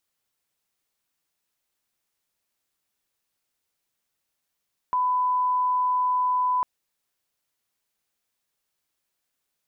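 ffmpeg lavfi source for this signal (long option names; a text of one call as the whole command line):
ffmpeg -f lavfi -i "sine=frequency=1000:duration=1.7:sample_rate=44100,volume=-1.94dB" out.wav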